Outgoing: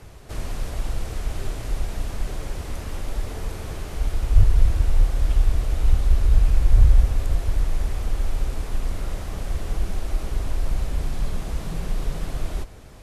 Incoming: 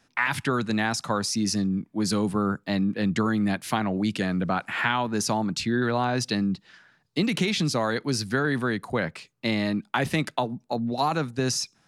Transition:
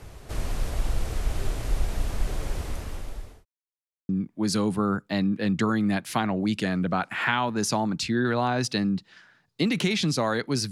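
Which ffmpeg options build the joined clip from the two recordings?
-filter_complex "[0:a]apad=whole_dur=10.71,atrim=end=10.71,asplit=2[a][b];[a]atrim=end=3.45,asetpts=PTS-STARTPTS,afade=t=out:st=2.58:d=0.87[c];[b]atrim=start=3.45:end=4.09,asetpts=PTS-STARTPTS,volume=0[d];[1:a]atrim=start=1.66:end=8.28,asetpts=PTS-STARTPTS,afade=t=in:d=0.004:c=hsin[e];[c][d][e]concat=n=3:v=0:a=1"

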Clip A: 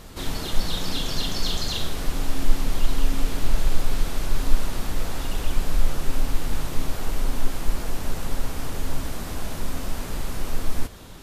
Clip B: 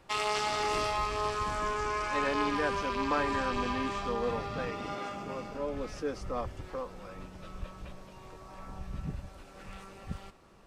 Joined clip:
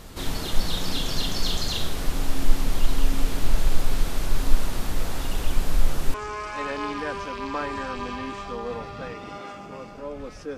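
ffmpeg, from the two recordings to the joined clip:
-filter_complex "[0:a]apad=whole_dur=10.57,atrim=end=10.57,atrim=end=6.142[a];[1:a]atrim=start=1.708:end=6.14[b];[a][b]acrossfade=d=0.004:c1=hsin:c2=hsin"

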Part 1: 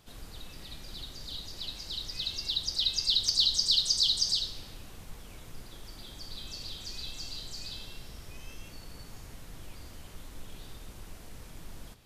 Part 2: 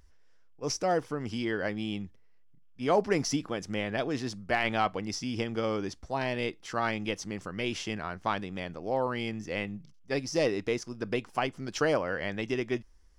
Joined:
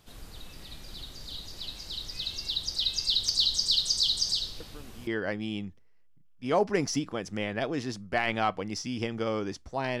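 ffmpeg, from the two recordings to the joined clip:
-filter_complex "[1:a]asplit=2[a][b];[0:a]apad=whole_dur=10,atrim=end=10,atrim=end=5.072[c];[b]atrim=start=1.438:end=6.37[d];[a]atrim=start=0.97:end=1.44,asetpts=PTS-STARTPTS,volume=-15dB,afade=t=in:d=0.004:c=hsin,afade=t=out:st=0.466:d=0.004:c=hsin,adelay=4600[e];[c][d]acrossfade=d=0.004:c1=hsin:c2=hsin[f];[f][e]amix=inputs=2:normalize=0"

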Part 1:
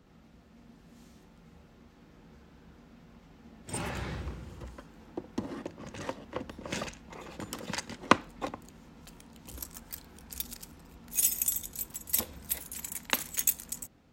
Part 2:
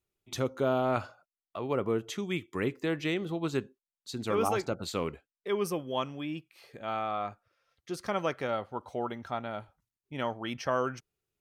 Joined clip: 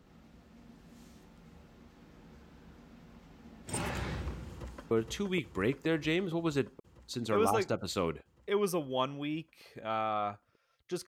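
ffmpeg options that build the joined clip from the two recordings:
-filter_complex "[0:a]apad=whole_dur=11.07,atrim=end=11.07,atrim=end=4.912[a];[1:a]atrim=start=1.888:end=8.05[b];[a][b]acrossfade=d=0.004:c1=hsin:c2=hsin,asplit=2[c][d];[d]afade=t=in:st=4.49:d=0.01,afade=t=out:st=4.91:d=0.01,aecho=0:1:470|940|1410|1880|2350|2820|3290|3760|4230|4700|5170|5640:0.630957|0.473218|0.354914|0.266185|0.199639|0.149729|0.112297|0.0842226|0.063167|0.0473752|0.0355314|0.0266486[e];[c][e]amix=inputs=2:normalize=0"

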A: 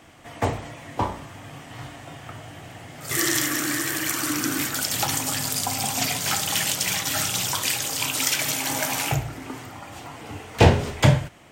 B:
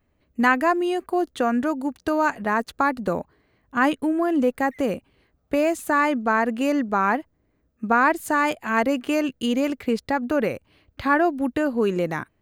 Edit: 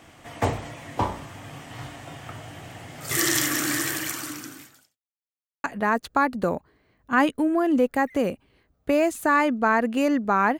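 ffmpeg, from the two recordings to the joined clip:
-filter_complex "[0:a]apad=whole_dur=10.59,atrim=end=10.59,asplit=2[a][b];[a]atrim=end=4.98,asetpts=PTS-STARTPTS,afade=t=out:st=3.83:d=1.15:c=qua[c];[b]atrim=start=4.98:end=5.64,asetpts=PTS-STARTPTS,volume=0[d];[1:a]atrim=start=2.28:end=7.23,asetpts=PTS-STARTPTS,afade=t=in:d=0.004:c=hsin[e];[c][d][e]concat=n=3:v=0:a=1"

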